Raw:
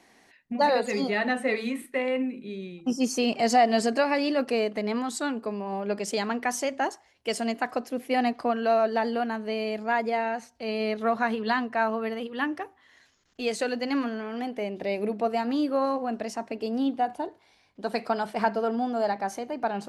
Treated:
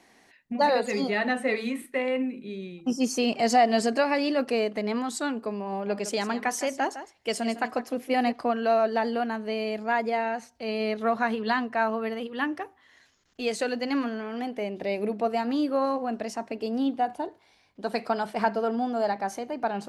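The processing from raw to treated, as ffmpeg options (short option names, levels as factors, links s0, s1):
-filter_complex "[0:a]asettb=1/sr,asplit=3[s0][s1][s2];[s0]atrim=end=5.714[s3];[s1]atrim=start=5.71:end=8.32,asetpts=PTS-STARTPTS,afade=t=in:d=0.004:c=qsin,afade=t=out:st=2.606:d=0.004:c=qsin,aecho=1:1:158:0.237,atrim=end_sample=115101[s4];[s2]atrim=start=8.316[s5];[s3][s4]acrossfade=d=0.004:c1=hsin:c2=qsin[s6];[s6][s5]acrossfade=d=0.004:c1=qsin:c2=hsin"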